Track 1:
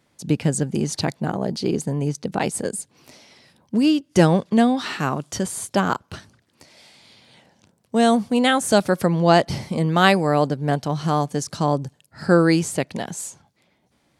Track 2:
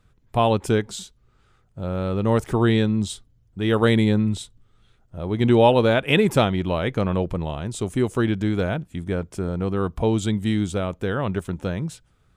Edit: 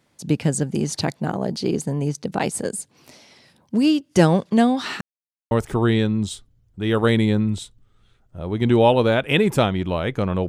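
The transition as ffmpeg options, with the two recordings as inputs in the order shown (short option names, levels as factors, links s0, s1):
-filter_complex "[0:a]apad=whole_dur=10.48,atrim=end=10.48,asplit=2[s0][s1];[s0]atrim=end=5.01,asetpts=PTS-STARTPTS,afade=t=out:st=5.006:d=0.004:c=hsin[s2];[s1]atrim=start=5.01:end=5.51,asetpts=PTS-STARTPTS,volume=0[s3];[1:a]atrim=start=2.3:end=7.27,asetpts=PTS-STARTPTS,afade=t=in:d=0.004:c=hsin[s4];[s2][s3][s4]concat=n=3:v=0:a=1"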